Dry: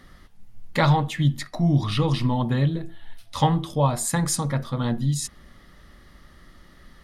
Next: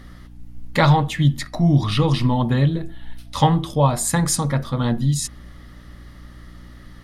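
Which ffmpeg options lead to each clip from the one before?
-af "aeval=exprs='val(0)+0.00562*(sin(2*PI*60*n/s)+sin(2*PI*2*60*n/s)/2+sin(2*PI*3*60*n/s)/3+sin(2*PI*4*60*n/s)/4+sin(2*PI*5*60*n/s)/5)':c=same,volume=4dB"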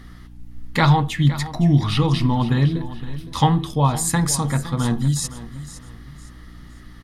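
-af "equalizer=f=570:t=o:w=0.3:g=-9.5,aecho=1:1:513|1026|1539:0.178|0.0569|0.0182"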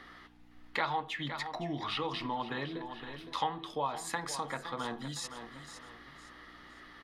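-filter_complex "[0:a]acrossover=split=360 4300:gain=0.0631 1 0.158[a][b][c];[a][b][c]amix=inputs=3:normalize=0,acompressor=threshold=-39dB:ratio=2"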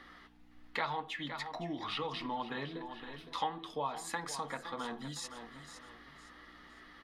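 -af "flanger=delay=3.5:depth=1.1:regen=-59:speed=1.7:shape=sinusoidal,volume=1.5dB"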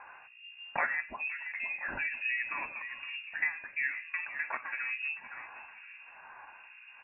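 -filter_complex "[0:a]lowpass=f=2.4k:t=q:w=0.5098,lowpass=f=2.4k:t=q:w=0.6013,lowpass=f=2.4k:t=q:w=0.9,lowpass=f=2.4k:t=q:w=2.563,afreqshift=-2800,aemphasis=mode=production:type=75fm,acrossover=split=2000[a][b];[a]aeval=exprs='val(0)*(1-1/2+1/2*cos(2*PI*1.1*n/s))':c=same[c];[b]aeval=exprs='val(0)*(1-1/2-1/2*cos(2*PI*1.1*n/s))':c=same[d];[c][d]amix=inputs=2:normalize=0,volume=7.5dB"

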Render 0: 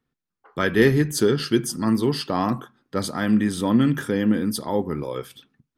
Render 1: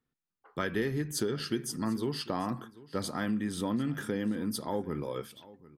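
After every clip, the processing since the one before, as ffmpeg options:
-af "acompressor=threshold=-21dB:ratio=6,aecho=1:1:743:0.1,volume=-6.5dB"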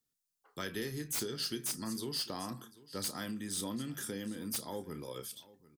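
-filter_complex "[0:a]acrossover=split=380|4300[a][b][c];[c]aeval=exprs='0.0708*sin(PI/2*5.01*val(0)/0.0708)':c=same[d];[a][b][d]amix=inputs=3:normalize=0,asplit=2[e][f];[f]adelay=31,volume=-13dB[g];[e][g]amix=inputs=2:normalize=0,volume=-8.5dB"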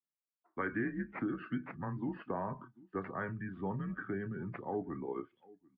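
-af "highpass=f=270:t=q:w=0.5412,highpass=f=270:t=q:w=1.307,lowpass=f=2.3k:t=q:w=0.5176,lowpass=f=2.3k:t=q:w=0.7071,lowpass=f=2.3k:t=q:w=1.932,afreqshift=-100,afftdn=nr=16:nf=-53,volume=5.5dB"

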